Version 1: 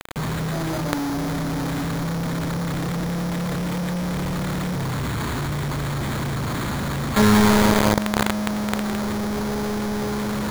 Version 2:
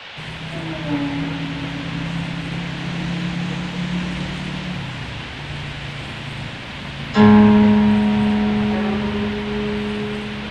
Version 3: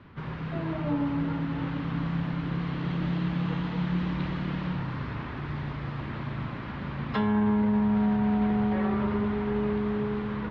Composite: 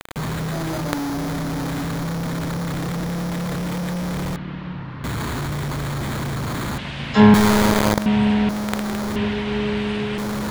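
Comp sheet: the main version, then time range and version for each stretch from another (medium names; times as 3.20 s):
1
4.36–5.04 s: from 3
6.78–7.34 s: from 2
8.06–8.49 s: from 2
9.16–10.18 s: from 2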